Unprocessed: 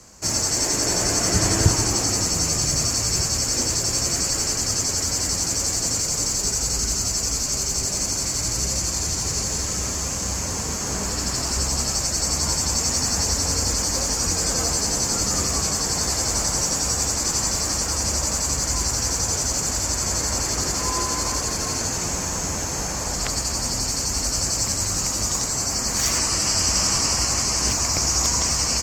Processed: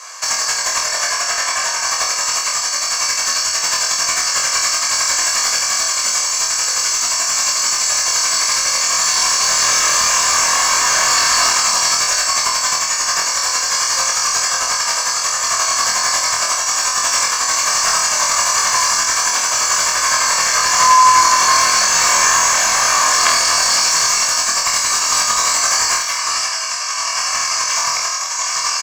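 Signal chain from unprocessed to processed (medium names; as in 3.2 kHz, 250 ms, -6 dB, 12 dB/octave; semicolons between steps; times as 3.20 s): high-pass 870 Hz 24 dB/octave; comb 1.8 ms, depth 67%; compressor with a negative ratio -25 dBFS, ratio -0.5; overdrive pedal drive 16 dB, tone 2 kHz, clips at -4.5 dBFS; flutter echo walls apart 4.2 m, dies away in 0.44 s; trim +6 dB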